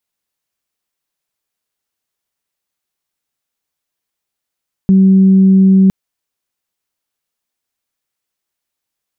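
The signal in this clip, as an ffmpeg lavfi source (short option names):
-f lavfi -i "aevalsrc='0.596*sin(2*PI*191*t)+0.0631*sin(2*PI*382*t)':d=1.01:s=44100"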